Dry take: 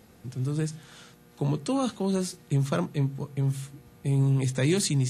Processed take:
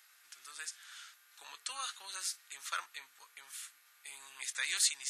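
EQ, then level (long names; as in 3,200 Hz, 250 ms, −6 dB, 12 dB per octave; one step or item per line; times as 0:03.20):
Chebyshev high-pass filter 1,400 Hz, order 3
0.0 dB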